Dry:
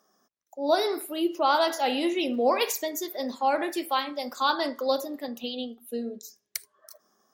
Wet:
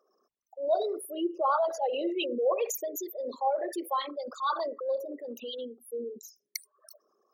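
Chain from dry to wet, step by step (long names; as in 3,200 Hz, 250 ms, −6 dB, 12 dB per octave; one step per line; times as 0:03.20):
spectral envelope exaggerated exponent 3
0:04.25–0:05.62: transient designer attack −4 dB, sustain +1 dB
level −3.5 dB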